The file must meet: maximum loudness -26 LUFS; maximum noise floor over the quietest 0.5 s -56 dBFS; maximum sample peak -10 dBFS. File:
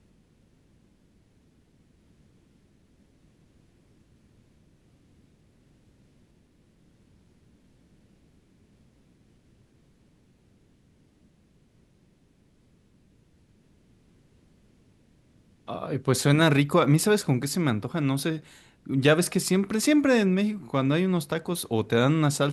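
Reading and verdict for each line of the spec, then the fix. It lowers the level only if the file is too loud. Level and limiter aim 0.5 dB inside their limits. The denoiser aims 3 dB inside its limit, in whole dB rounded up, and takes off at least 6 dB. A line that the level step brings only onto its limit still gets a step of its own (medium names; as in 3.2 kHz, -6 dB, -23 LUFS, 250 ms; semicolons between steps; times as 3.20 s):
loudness -24.0 LUFS: fail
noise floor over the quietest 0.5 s -62 dBFS: pass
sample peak -7.5 dBFS: fail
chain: trim -2.5 dB; peak limiter -10.5 dBFS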